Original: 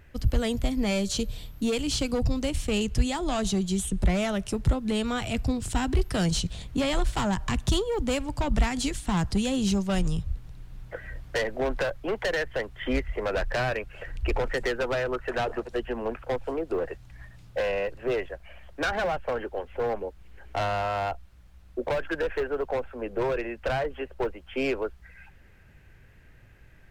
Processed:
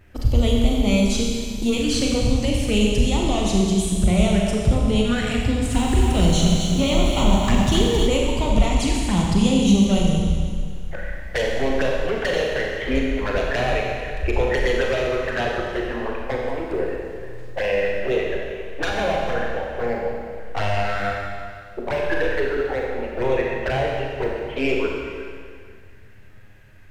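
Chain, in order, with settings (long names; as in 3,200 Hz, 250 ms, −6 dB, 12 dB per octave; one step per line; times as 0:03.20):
dynamic equaliser 1,700 Hz, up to +5 dB, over −44 dBFS, Q 1.9
flanger swept by the level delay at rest 11.5 ms, full sweep at −22.5 dBFS
four-comb reverb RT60 2 s, combs from 30 ms, DRR −1.5 dB
0:05.46–0:08.07: feedback echo at a low word length 266 ms, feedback 35%, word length 8 bits, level −5.5 dB
level +4.5 dB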